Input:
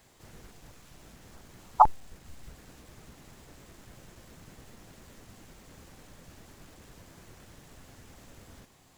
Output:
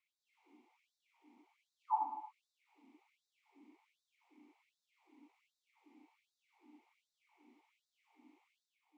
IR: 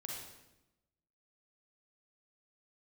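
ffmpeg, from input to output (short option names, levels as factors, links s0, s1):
-filter_complex "[0:a]aeval=exprs='val(0)+0.00447*(sin(2*PI*60*n/s)+sin(2*PI*2*60*n/s)/2+sin(2*PI*3*60*n/s)/3+sin(2*PI*4*60*n/s)/4+sin(2*PI*5*60*n/s)/5)':c=same,asplit=3[s0][s1][s2];[s0]bandpass=f=300:t=q:w=8,volume=1[s3];[s1]bandpass=f=870:t=q:w=8,volume=0.501[s4];[s2]bandpass=f=2240:t=q:w=8,volume=0.355[s5];[s3][s4][s5]amix=inputs=3:normalize=0[s6];[1:a]atrim=start_sample=2205[s7];[s6][s7]afir=irnorm=-1:irlink=0,afftfilt=real='re*gte(b*sr/1024,200*pow(3600/200,0.5+0.5*sin(2*PI*1.3*pts/sr)))':imag='im*gte(b*sr/1024,200*pow(3600/200,0.5+0.5*sin(2*PI*1.3*pts/sr)))':win_size=1024:overlap=0.75,volume=1.19"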